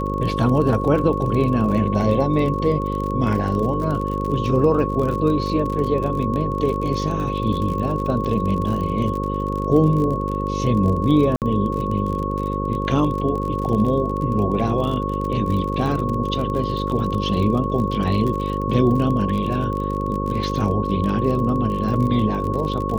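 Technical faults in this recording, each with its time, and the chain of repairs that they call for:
buzz 50 Hz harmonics 11 -25 dBFS
crackle 41 per s -26 dBFS
whine 1.1 kHz -26 dBFS
11.36–11.42 s: dropout 58 ms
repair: de-click; band-stop 1.1 kHz, Q 30; de-hum 50 Hz, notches 11; interpolate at 11.36 s, 58 ms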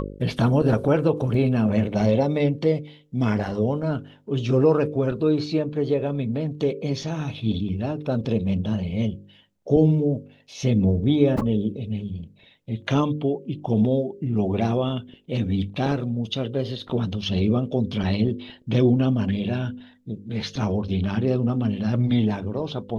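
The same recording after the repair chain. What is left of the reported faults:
nothing left

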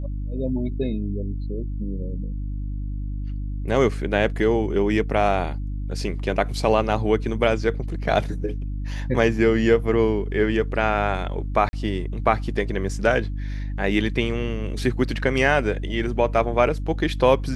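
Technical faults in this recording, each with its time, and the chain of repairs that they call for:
hum 50 Hz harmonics 6 -28 dBFS
11.69–11.73 s: dropout 40 ms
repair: de-hum 50 Hz, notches 6; interpolate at 11.69 s, 40 ms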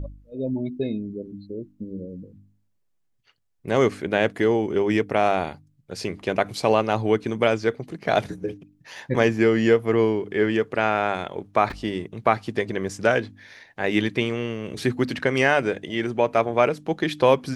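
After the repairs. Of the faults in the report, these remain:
nothing left

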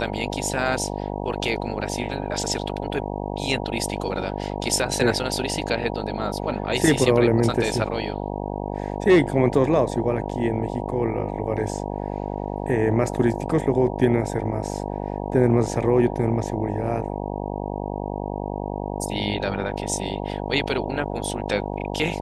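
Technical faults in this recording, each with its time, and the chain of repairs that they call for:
buzz 50 Hz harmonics 19 -29 dBFS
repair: de-hum 50 Hz, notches 19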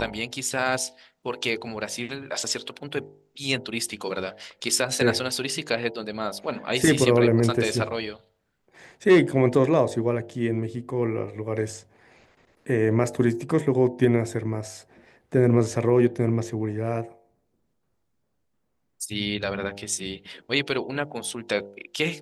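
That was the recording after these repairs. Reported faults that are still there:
nothing left

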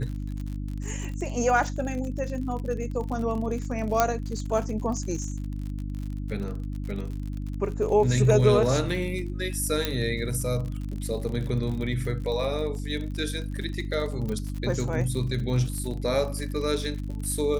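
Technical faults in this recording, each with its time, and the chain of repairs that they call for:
crackle 55 per s -33 dBFS
hum 50 Hz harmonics 6 -32 dBFS
4.00 s: pop -6 dBFS
9.85 s: pop -9 dBFS
14.29 s: pop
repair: de-click; de-hum 50 Hz, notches 6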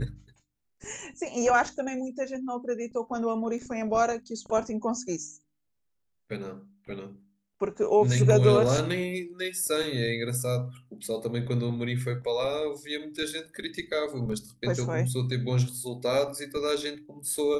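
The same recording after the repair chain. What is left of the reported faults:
9.85 s: pop
14.29 s: pop

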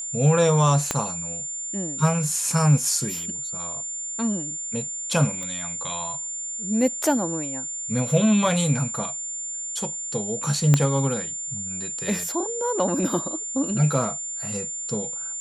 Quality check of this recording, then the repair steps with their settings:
whine 7.2 kHz -29 dBFS
0.91 s: pop -7 dBFS
5.43 s: pop -20 dBFS
10.74 s: pop -5 dBFS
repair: de-click; band-stop 7.2 kHz, Q 30

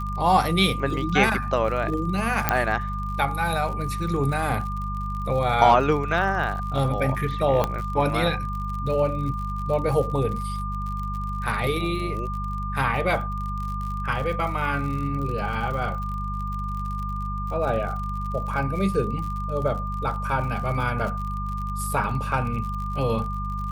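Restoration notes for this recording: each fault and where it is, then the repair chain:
crackle 58 per s -32 dBFS
hum 50 Hz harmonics 4 -30 dBFS
whine 1.2 kHz -31 dBFS
2.49 s: pop -3 dBFS
7.64 s: pop -9 dBFS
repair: de-click; band-stop 1.2 kHz, Q 30; de-hum 50 Hz, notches 4

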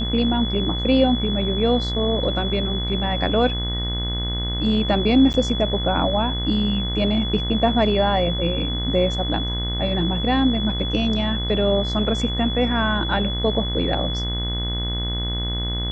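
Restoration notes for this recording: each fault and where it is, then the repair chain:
buzz 60 Hz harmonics 36 -26 dBFS
whine 3.4 kHz -27 dBFS
5.33–5.34 s: dropout 9.6 ms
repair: band-stop 3.4 kHz, Q 30; de-hum 60 Hz, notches 36; interpolate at 5.33 s, 9.6 ms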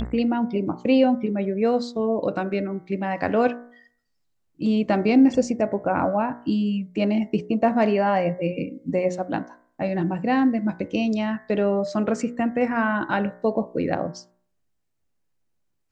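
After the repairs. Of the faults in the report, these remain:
nothing left

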